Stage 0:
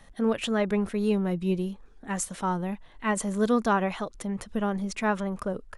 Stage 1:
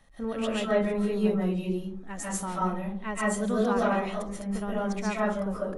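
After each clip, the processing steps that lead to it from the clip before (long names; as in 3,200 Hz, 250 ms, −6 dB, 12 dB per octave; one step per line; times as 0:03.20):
convolution reverb RT60 0.50 s, pre-delay 100 ms, DRR −6.5 dB
level −8 dB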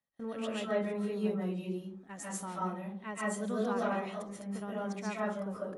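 high-pass filter 120 Hz 12 dB per octave
noise gate with hold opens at −37 dBFS
level −7 dB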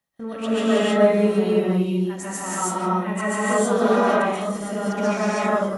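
reverb whose tail is shaped and stops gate 350 ms rising, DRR −6 dB
level +8 dB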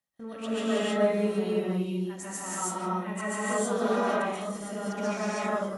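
parametric band 7,600 Hz +3.5 dB 2.5 octaves
level −8.5 dB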